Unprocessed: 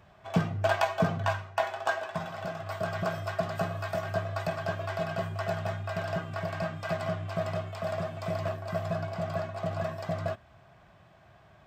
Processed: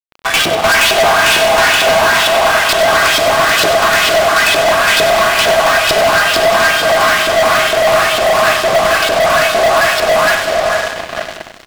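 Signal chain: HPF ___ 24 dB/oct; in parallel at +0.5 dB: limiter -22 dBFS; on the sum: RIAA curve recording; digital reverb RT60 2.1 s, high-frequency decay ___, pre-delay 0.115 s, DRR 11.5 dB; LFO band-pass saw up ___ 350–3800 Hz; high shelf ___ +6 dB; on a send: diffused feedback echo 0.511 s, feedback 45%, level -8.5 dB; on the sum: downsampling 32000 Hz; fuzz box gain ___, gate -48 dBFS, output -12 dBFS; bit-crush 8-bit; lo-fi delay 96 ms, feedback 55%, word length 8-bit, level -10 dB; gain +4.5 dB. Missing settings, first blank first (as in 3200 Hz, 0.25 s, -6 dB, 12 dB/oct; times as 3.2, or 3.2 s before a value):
69 Hz, 0.9×, 2.2 Hz, 3100 Hz, 42 dB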